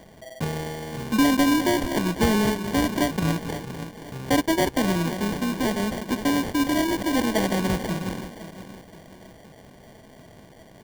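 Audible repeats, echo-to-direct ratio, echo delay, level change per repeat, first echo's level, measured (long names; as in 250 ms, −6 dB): 3, −12.5 dB, 520 ms, −7.5 dB, −13.5 dB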